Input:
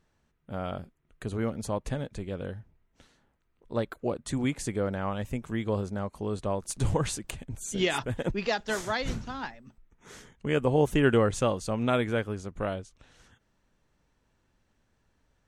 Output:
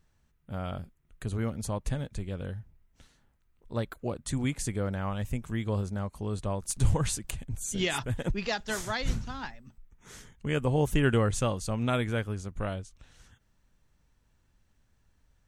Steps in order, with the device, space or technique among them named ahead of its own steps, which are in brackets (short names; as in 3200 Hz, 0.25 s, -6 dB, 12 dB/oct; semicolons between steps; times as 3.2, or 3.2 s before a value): smiley-face EQ (low shelf 140 Hz +8 dB; bell 410 Hz -4 dB 2.1 oct; high shelf 7500 Hz +7.5 dB); gain -1.5 dB